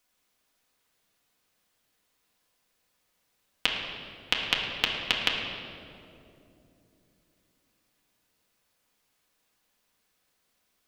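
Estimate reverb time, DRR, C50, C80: 2.9 s, -3.0 dB, 2.0 dB, 3.5 dB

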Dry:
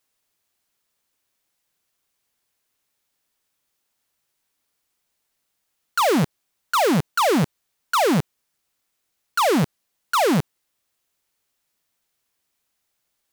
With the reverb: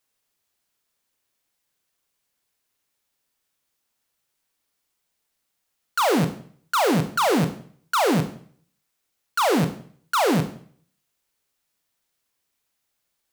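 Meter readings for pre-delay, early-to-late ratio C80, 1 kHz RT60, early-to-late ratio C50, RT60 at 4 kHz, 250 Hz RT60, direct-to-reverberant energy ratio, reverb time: 23 ms, 15.0 dB, 0.55 s, 11.5 dB, 0.50 s, 0.55 s, 8.0 dB, 0.55 s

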